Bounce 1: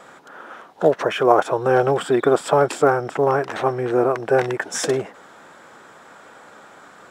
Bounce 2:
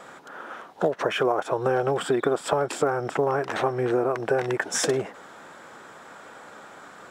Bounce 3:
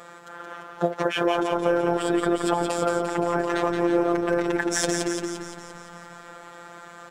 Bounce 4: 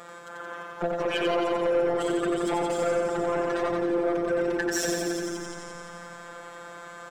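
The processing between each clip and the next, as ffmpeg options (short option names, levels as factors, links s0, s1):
-af "acompressor=threshold=0.112:ratio=10"
-filter_complex "[0:a]asplit=9[s0][s1][s2][s3][s4][s5][s6][s7][s8];[s1]adelay=173,afreqshift=-33,volume=0.562[s9];[s2]adelay=346,afreqshift=-66,volume=0.339[s10];[s3]adelay=519,afreqshift=-99,volume=0.202[s11];[s4]adelay=692,afreqshift=-132,volume=0.122[s12];[s5]adelay=865,afreqshift=-165,volume=0.0733[s13];[s6]adelay=1038,afreqshift=-198,volume=0.0437[s14];[s7]adelay=1211,afreqshift=-231,volume=0.0263[s15];[s8]adelay=1384,afreqshift=-264,volume=0.0157[s16];[s0][s9][s10][s11][s12][s13][s14][s15][s16]amix=inputs=9:normalize=0,afftfilt=real='hypot(re,im)*cos(PI*b)':imag='0':win_size=1024:overlap=0.75,volume=1.41"
-af "asoftclip=type=tanh:threshold=0.1,aecho=1:1:91:0.668"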